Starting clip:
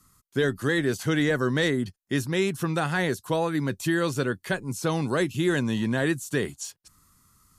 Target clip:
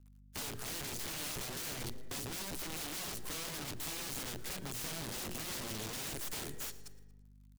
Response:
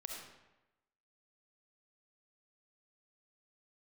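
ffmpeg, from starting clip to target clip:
-filter_complex "[0:a]aeval=exprs='0.251*(cos(1*acos(clip(val(0)/0.251,-1,1)))-cos(1*PI/2))+0.112*(cos(2*acos(clip(val(0)/0.251,-1,1)))-cos(2*PI/2))+0.1*(cos(4*acos(clip(val(0)/0.251,-1,1)))-cos(4*PI/2))':c=same,bandreject=f=60:t=h:w=6,bandreject=f=120:t=h:w=6,bandreject=f=180:t=h:w=6,bandreject=f=240:t=h:w=6,bandreject=f=300:t=h:w=6,bandreject=f=360:t=h:w=6,bandreject=f=420:t=h:w=6,aeval=exprs='sgn(val(0))*max(abs(val(0))-0.00237,0)':c=same,asplit=2[s0][s1];[1:a]atrim=start_sample=2205[s2];[s1][s2]afir=irnorm=-1:irlink=0,volume=0.126[s3];[s0][s3]amix=inputs=2:normalize=0,acompressor=threshold=0.00501:ratio=2,aeval=exprs='val(0)+0.000631*(sin(2*PI*50*n/s)+sin(2*PI*2*50*n/s)/2+sin(2*PI*3*50*n/s)/3+sin(2*PI*4*50*n/s)/4+sin(2*PI*5*50*n/s)/5)':c=same,aeval=exprs='(mod(106*val(0)+1,2)-1)/106':c=same,acrossover=split=400|3000[s4][s5][s6];[s5]acompressor=threshold=0.00224:ratio=6[s7];[s4][s7][s6]amix=inputs=3:normalize=0,aecho=1:1:114|228|342:0.106|0.0424|0.0169,volume=2.11"

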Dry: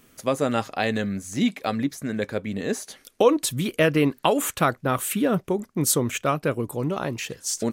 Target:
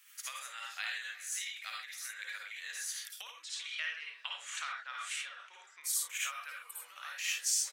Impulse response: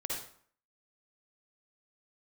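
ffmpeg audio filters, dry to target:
-filter_complex "[0:a]asettb=1/sr,asplit=3[s0][s1][s2];[s0]atrim=end=3.434[s3];[s1]atrim=start=3.43:end=5.84,asetpts=PTS-STARTPTS,afade=t=in:d=0.004:c=qsin,afade=t=out:st=2.406:d=0.004:c=qsin,lowpass=f=6500:w=0.5412,lowpass=f=6500:w=1.3066[s4];[s2]atrim=start=5.836[s5];[s3][s4]acrossfade=d=0.004:c1=hsin:c2=qsin[s6];[s6][s5]acrossfade=d=0.004:c1=qsin:c2=hsin,asplit=2[s7][s8];[s8]adelay=280,highpass=300,lowpass=3400,asoftclip=type=hard:threshold=0.2,volume=0.0891[s9];[s7][s9]amix=inputs=2:normalize=0[s10];[1:a]atrim=start_sample=2205,atrim=end_sample=6174[s11];[s10][s11]afir=irnorm=-1:irlink=0,acompressor=threshold=0.0447:ratio=12,highpass=f=1500:w=0.5412,highpass=f=1500:w=1.3066"

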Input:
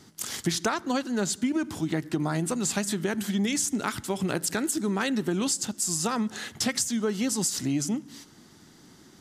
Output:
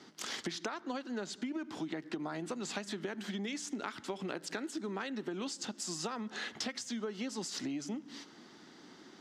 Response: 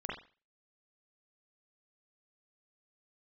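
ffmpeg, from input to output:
-filter_complex "[0:a]acrossover=split=210 5500:gain=0.0891 1 0.0794[s0][s1][s2];[s0][s1][s2]amix=inputs=3:normalize=0,acompressor=threshold=0.0141:ratio=6,volume=1.12"

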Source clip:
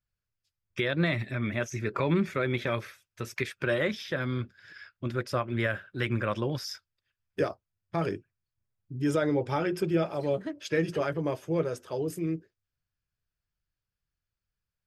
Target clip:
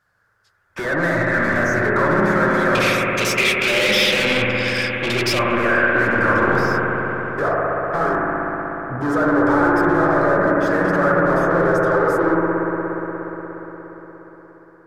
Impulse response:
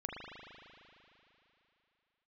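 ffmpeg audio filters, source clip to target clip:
-filter_complex "[0:a]asplit=2[s0][s1];[s1]highpass=f=720:p=1,volume=63.1,asoftclip=type=tanh:threshold=0.168[s2];[s0][s2]amix=inputs=2:normalize=0,lowpass=f=3500:p=1,volume=0.501,asetnsamples=n=441:p=0,asendcmd='2.75 highshelf g 6.5;5.39 highshelf g -9.5',highshelf=f=2000:t=q:w=3:g=-7[s3];[1:a]atrim=start_sample=2205,asetrate=28665,aresample=44100[s4];[s3][s4]afir=irnorm=-1:irlink=0"

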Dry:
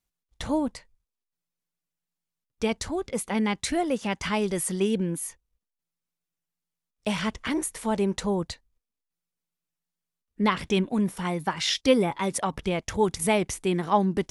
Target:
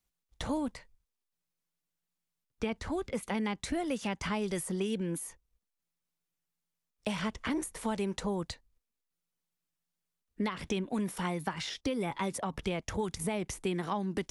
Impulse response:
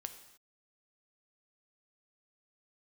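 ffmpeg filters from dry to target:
-filter_complex "[0:a]asettb=1/sr,asplit=3[s0][s1][s2];[s0]atrim=end=0.574[s3];[s1]atrim=start=0.57:end=3.23,asetpts=PTS-STARTPTS,afade=t=in:d=0.004:c=qsin,afade=t=out:st=2.656:d=0.004:c=qsin,acrossover=split=2700[s4][s5];[s5]acompressor=threshold=0.00398:ratio=4:attack=1:release=60[s6];[s4][s6]amix=inputs=2:normalize=0[s7];[s2]atrim=start=3.226[s8];[s3][s7]acrossfade=d=0.004:c1=hsin:c2=qsin[s9];[s9][s8]acrossfade=d=0.004:c1=qsin:c2=hsin,alimiter=limit=0.158:level=0:latency=1:release=229,acrossover=split=260|1300[s10][s11][s12];[s10]acompressor=threshold=0.0141:ratio=4[s13];[s11]acompressor=threshold=0.0178:ratio=4[s14];[s12]acompressor=threshold=0.01:ratio=4[s15];[s13][s14][s15]amix=inputs=3:normalize=0"

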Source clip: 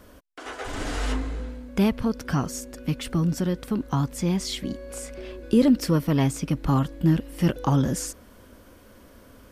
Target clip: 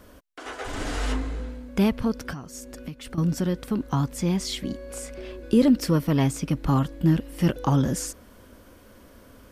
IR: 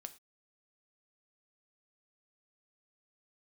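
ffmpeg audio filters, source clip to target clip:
-filter_complex "[0:a]asettb=1/sr,asplit=3[s0][s1][s2];[s0]atrim=end=2.304[s3];[s1]atrim=start=2.3:end=3.18,asetpts=PTS-STARTPTS,afade=t=in:d=0.004:c=qsin,afade=t=out:st=0.876:d=0.004:c=qsin,acompressor=threshold=0.0224:ratio=16[s4];[s2]atrim=start=3.176[s5];[s3][s4]acrossfade=d=0.004:c1=hsin:c2=qsin[s6];[s6][s5]acrossfade=d=0.004:c1=qsin:c2=hsin"

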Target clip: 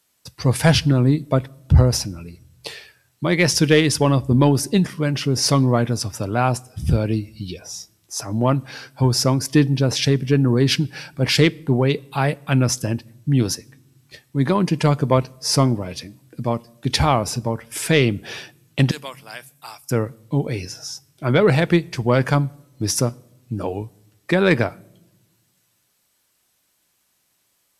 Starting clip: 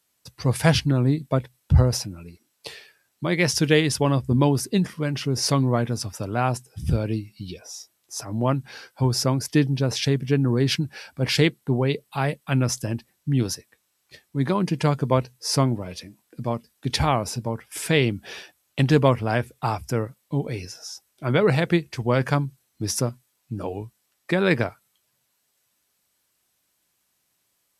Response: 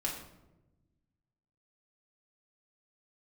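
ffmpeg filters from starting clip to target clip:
-filter_complex "[0:a]asettb=1/sr,asplit=3[s0][s1][s2];[s0]atrim=end=18.914[s3];[s1]atrim=start=18.91:end=19.91,asetpts=PTS-STARTPTS,afade=t=in:d=0.004:c=qsin,afade=t=out:st=0.996:d=0.004:c=qsin,aderivative[s4];[s2]atrim=start=19.906[s5];[s3][s4]acrossfade=d=0.004:c1=hsin:c2=qsin[s6];[s6][s5]acrossfade=d=0.004:c1=qsin:c2=hsin,acontrast=32,asplit=2[s7][s8];[1:a]atrim=start_sample=2205,lowpass=9500,highshelf=f=5000:g=9[s9];[s8][s9]afir=irnorm=-1:irlink=0,volume=0.0596[s10];[s7][s10]amix=inputs=2:normalize=0,volume=0.891"

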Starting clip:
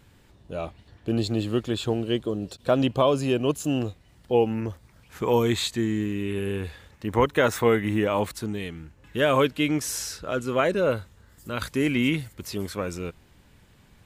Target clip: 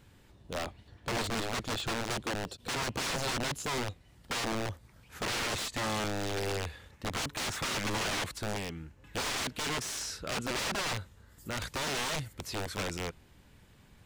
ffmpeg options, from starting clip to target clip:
-filter_complex "[0:a]aeval=exprs='(mod(16.8*val(0)+1,2)-1)/16.8':c=same,acrossover=split=8900[s0][s1];[s1]acompressor=threshold=0.00447:ratio=4:attack=1:release=60[s2];[s0][s2]amix=inputs=2:normalize=0,volume=0.708"

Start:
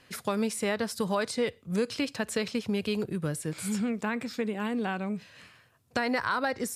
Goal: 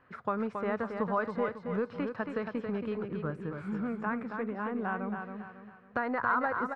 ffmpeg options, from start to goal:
-af "aeval=exprs='0.178*(cos(1*acos(clip(val(0)/0.178,-1,1)))-cos(1*PI/2))+0.00224*(cos(4*acos(clip(val(0)/0.178,-1,1)))-cos(4*PI/2))':c=same,lowpass=f=1300:t=q:w=2.4,aecho=1:1:275|550|825|1100|1375:0.501|0.19|0.0724|0.0275|0.0105,volume=0.562"

